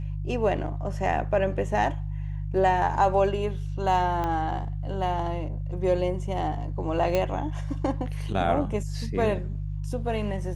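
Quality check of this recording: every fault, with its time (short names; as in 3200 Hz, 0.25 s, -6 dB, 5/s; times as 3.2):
hum 50 Hz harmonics 3 -31 dBFS
4.24 pop -17 dBFS
7.15 pop -12 dBFS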